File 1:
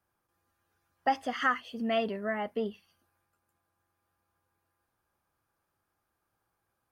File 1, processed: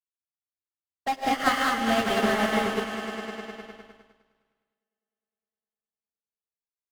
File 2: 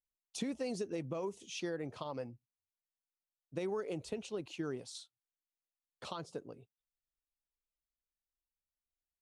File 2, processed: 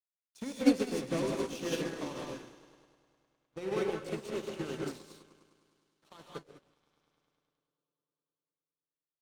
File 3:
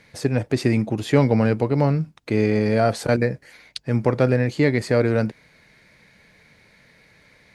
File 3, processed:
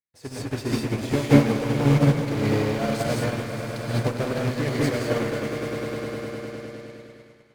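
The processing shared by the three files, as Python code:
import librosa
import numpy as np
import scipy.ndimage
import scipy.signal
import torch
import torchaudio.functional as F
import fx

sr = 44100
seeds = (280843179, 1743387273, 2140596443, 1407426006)

p1 = fx.echo_swell(x, sr, ms=102, loudest=5, wet_db=-13.0)
p2 = fx.fuzz(p1, sr, gain_db=36.0, gate_db=-45.0)
p3 = p1 + (p2 * 10.0 ** (-4.0 / 20.0))
p4 = fx.rev_gated(p3, sr, seeds[0], gate_ms=230, shape='rising', drr_db=-2.0)
p5 = fx.upward_expand(p4, sr, threshold_db=-32.0, expansion=2.5)
y = p5 * 10.0 ** (-6.5 / 20.0)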